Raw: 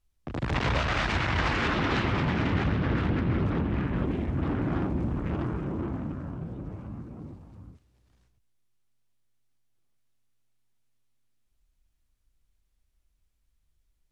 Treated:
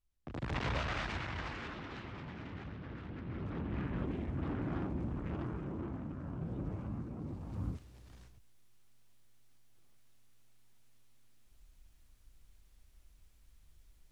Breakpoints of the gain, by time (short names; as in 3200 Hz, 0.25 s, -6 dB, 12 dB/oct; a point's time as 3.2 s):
0.85 s -9 dB
1.89 s -19.5 dB
3.06 s -19.5 dB
3.8 s -9 dB
6.09 s -9 dB
6.59 s -1.5 dB
7.23 s -1.5 dB
7.66 s +10 dB